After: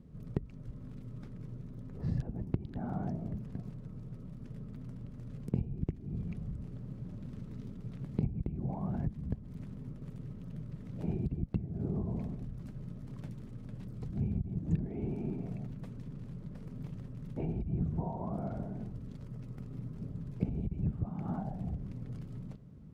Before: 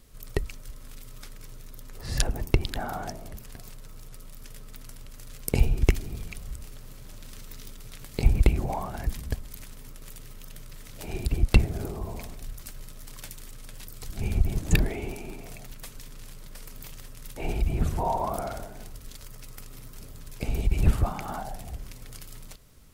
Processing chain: compressor 8:1, threshold -33 dBFS, peak gain reduction 21.5 dB; band-pass 170 Hz, Q 1.8; gain +12 dB

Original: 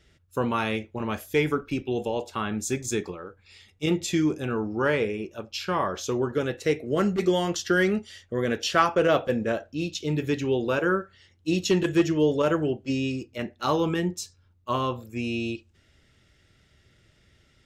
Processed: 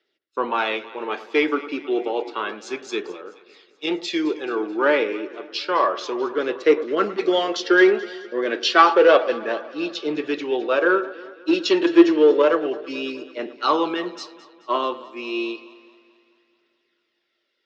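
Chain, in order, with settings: phaser 0.3 Hz, delay 3.6 ms, feedback 37%; in parallel at -5 dB: hard clip -18 dBFS, distortion -13 dB; on the sum: Chebyshev band-pass 330–4600 Hz, order 3; on a send: echo with dull and thin repeats by turns 0.108 s, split 1600 Hz, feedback 81%, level -14 dB; on the sum: three-band expander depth 40%; gain +1.5 dB

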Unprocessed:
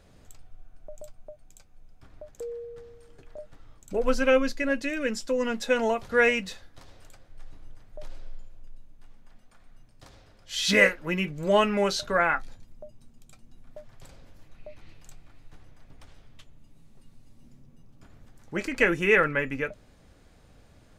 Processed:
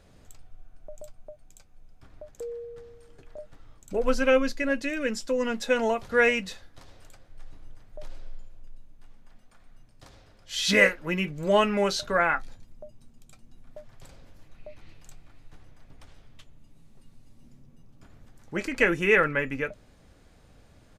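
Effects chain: downsampling 32000 Hz

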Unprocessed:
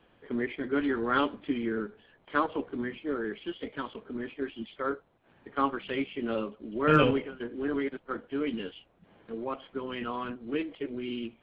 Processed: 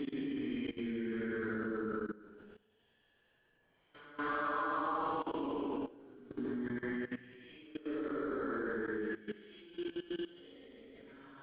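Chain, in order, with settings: Paulstretch 4.9×, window 0.25 s, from 1.44; level quantiser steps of 18 dB; dynamic EQ 1100 Hz, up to +4 dB, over -49 dBFS, Q 2.1; gain -1.5 dB

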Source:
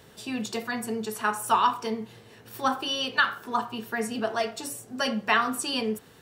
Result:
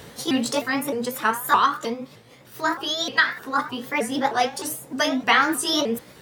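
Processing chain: repeated pitch sweeps +4.5 st, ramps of 0.308 s; vocal rider 2 s; gain +5 dB

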